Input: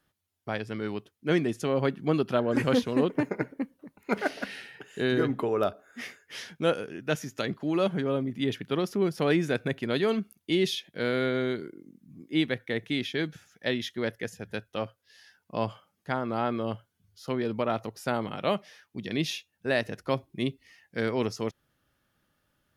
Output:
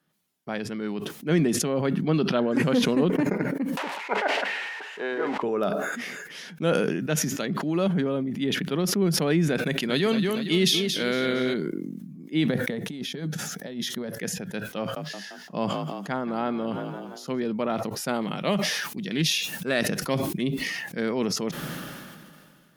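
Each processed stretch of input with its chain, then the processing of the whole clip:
0:02.02–0:02.49: Savitzky-Golay smoothing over 15 samples + high-shelf EQ 3,400 Hz +8.5 dB
0:03.77–0:05.43: spike at every zero crossing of −24.5 dBFS + Chebyshev band-pass filter 480–2,300 Hz + parametric band 890 Hz +10 dB 0.56 octaves
0:09.58–0:11.54: high-shelf EQ 2,100 Hz +8.5 dB + feedback echo with a swinging delay time 231 ms, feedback 52%, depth 88 cents, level −9 dB
0:12.48–0:14.21: parametric band 2,400 Hz −9.5 dB 1.5 octaves + notch filter 340 Hz, Q 7.1 + compressor whose output falls as the input rises −34 dBFS, ratio −0.5
0:14.79–0:17.40: parametric band 6,800 Hz +5 dB 0.34 octaves + echo with shifted repeats 172 ms, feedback 49%, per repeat +44 Hz, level −15.5 dB
0:18.09–0:20.41: high-shelf EQ 3,200 Hz +8 dB + highs frequency-modulated by the lows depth 0.13 ms
whole clip: low shelf with overshoot 120 Hz −11.5 dB, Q 3; level that may fall only so fast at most 27 dB per second; level −1 dB

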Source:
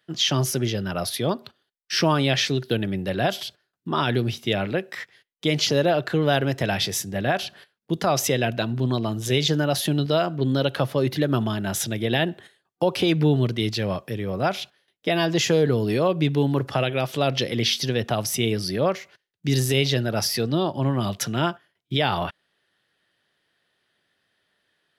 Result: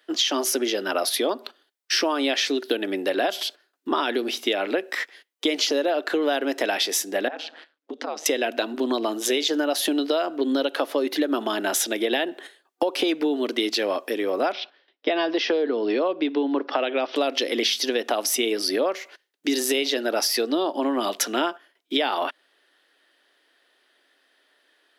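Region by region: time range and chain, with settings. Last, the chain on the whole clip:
0:07.28–0:08.26: downward compressor, threshold −31 dBFS + ring modulation 78 Hz + high-frequency loss of the air 110 metres
0:14.52–0:17.16: Chebyshev band-pass filter 140–5,600 Hz, order 5 + high-frequency loss of the air 130 metres
whole clip: elliptic high-pass filter 270 Hz, stop band 50 dB; downward compressor, threshold −28 dBFS; level +8 dB

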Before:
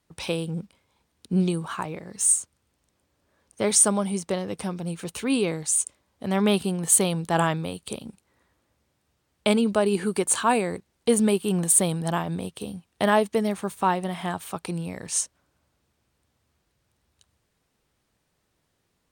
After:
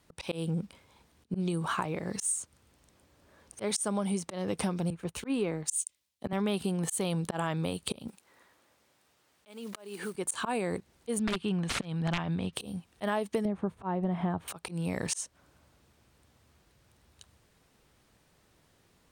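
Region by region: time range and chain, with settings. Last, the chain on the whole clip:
0:04.90–0:06.33: mu-law and A-law mismatch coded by A + multiband upward and downward expander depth 100%
0:08.08–0:10.15: one scale factor per block 5 bits + high-pass filter 530 Hz 6 dB per octave + downward compressor 4 to 1, threshold −42 dBFS
0:11.19–0:12.53: wrap-around overflow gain 14.5 dB + low-pass filter 3,400 Hz + parametric band 500 Hz −8 dB 2.4 octaves
0:13.45–0:14.48: low-pass filter 1,100 Hz 6 dB per octave + spectral tilt −2 dB per octave
whole clip: high-shelf EQ 4,700 Hz −2 dB; volume swells 327 ms; downward compressor 6 to 1, threshold −36 dBFS; level +7.5 dB

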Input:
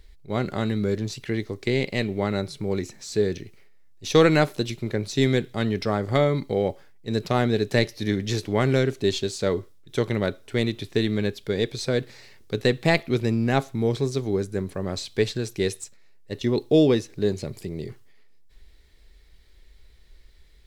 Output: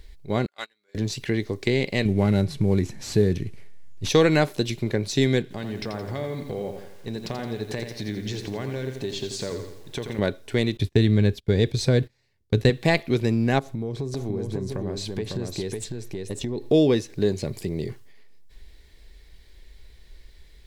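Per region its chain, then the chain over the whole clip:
0:00.46–0:00.95: high-pass filter 1,100 Hz + noise gate −36 dBFS, range −33 dB
0:02.05–0:04.09: variable-slope delta modulation 64 kbit/s + bass and treble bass +10 dB, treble −4 dB
0:05.42–0:10.19: high-shelf EQ 10,000 Hz −9 dB + downward compressor 4 to 1, threshold −33 dBFS + feedback echo at a low word length 85 ms, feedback 55%, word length 9 bits, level −7 dB
0:10.77–0:12.70: noise gate −41 dBFS, range −27 dB + parametric band 70 Hz +14 dB 2.4 octaves
0:13.59–0:16.71: tilt shelving filter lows +4 dB, about 870 Hz + downward compressor, threshold −30 dBFS + single-tap delay 552 ms −3.5 dB
whole clip: notch filter 1,300 Hz, Q 9.6; downward compressor 1.5 to 1, threshold −28 dBFS; level +4.5 dB

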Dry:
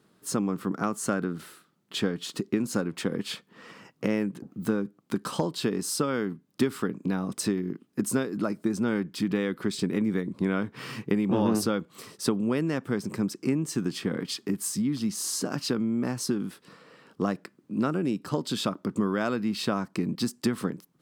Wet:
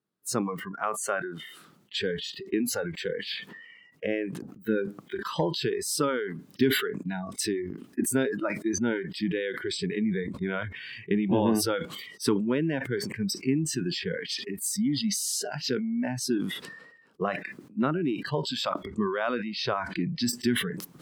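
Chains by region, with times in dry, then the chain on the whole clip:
0:18.86–0:20.29: low-pass filter 9,000 Hz + upward compression, threshold −28 dBFS
whole clip: noise reduction from a noise print of the clip's start 24 dB; level that may fall only so fast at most 52 dB per second; level +1 dB

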